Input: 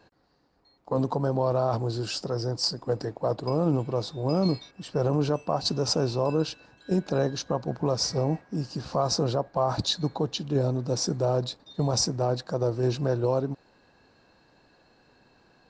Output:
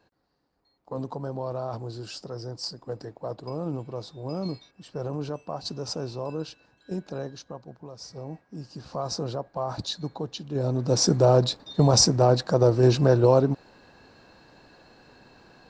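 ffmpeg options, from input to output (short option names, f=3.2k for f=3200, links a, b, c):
-af "volume=17.5dB,afade=t=out:st=6.96:d=0.96:silence=0.298538,afade=t=in:st=7.92:d=1.18:silence=0.237137,afade=t=in:st=10.53:d=0.56:silence=0.251189"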